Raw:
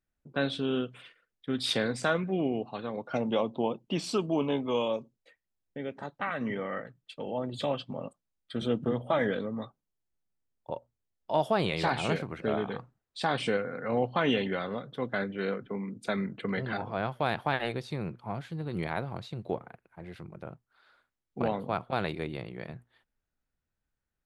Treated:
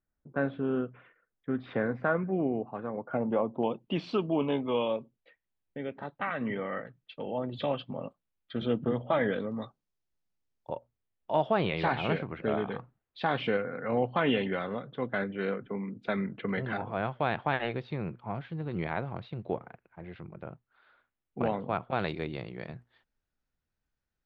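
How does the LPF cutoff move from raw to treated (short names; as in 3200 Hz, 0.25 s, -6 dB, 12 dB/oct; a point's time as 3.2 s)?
LPF 24 dB/oct
1800 Hz
from 3.63 s 3500 Hz
from 9.52 s 6400 Hz
from 10.72 s 3300 Hz
from 21.99 s 6200 Hz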